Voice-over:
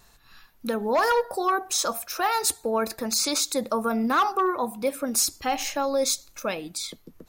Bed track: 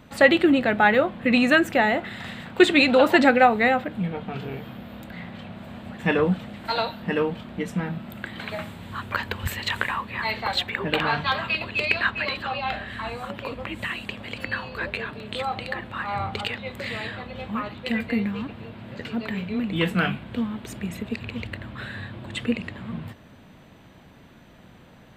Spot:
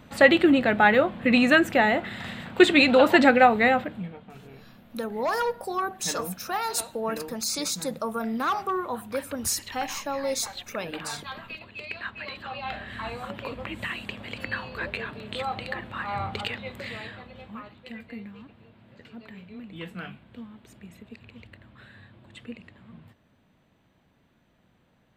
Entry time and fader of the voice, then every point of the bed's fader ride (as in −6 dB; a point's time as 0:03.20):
4.30 s, −4.5 dB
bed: 0:03.81 −0.5 dB
0:04.21 −14 dB
0:11.86 −14 dB
0:13.01 −2.5 dB
0:16.59 −2.5 dB
0:17.95 −15 dB